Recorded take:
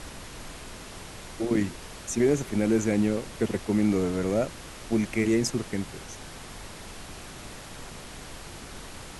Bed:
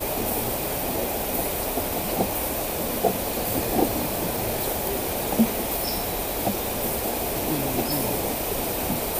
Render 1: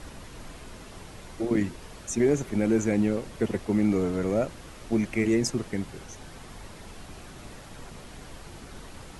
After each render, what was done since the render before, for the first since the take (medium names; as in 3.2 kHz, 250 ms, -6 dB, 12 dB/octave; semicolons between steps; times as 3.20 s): noise reduction 6 dB, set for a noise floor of -43 dBFS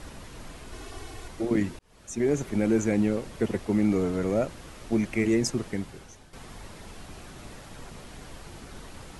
0.72–1.28 s: comb 2.7 ms, depth 99%; 1.79–2.42 s: fade in; 5.69–6.33 s: fade out, to -11.5 dB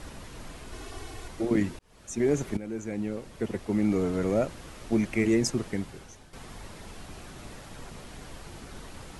2.57–4.23 s: fade in, from -15 dB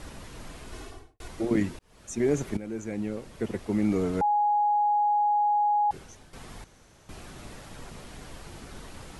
0.78–1.20 s: studio fade out; 4.21–5.91 s: bleep 831 Hz -20.5 dBFS; 6.64–7.09 s: room tone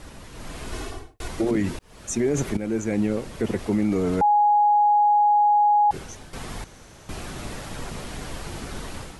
level rider gain up to 9.5 dB; peak limiter -14.5 dBFS, peak gain reduction 9.5 dB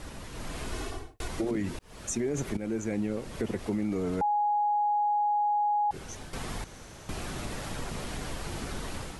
compression 2:1, threshold -33 dBFS, peak gain reduction 9 dB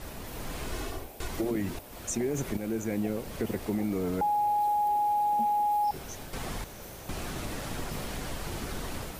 add bed -21 dB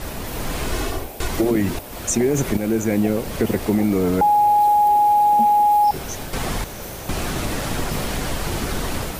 trim +11.5 dB